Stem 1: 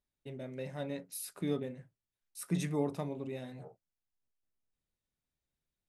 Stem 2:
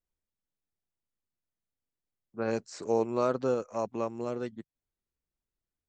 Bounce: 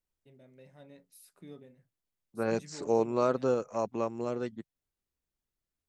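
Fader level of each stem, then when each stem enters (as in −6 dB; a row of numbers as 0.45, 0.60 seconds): −14.5, +0.5 decibels; 0.00, 0.00 seconds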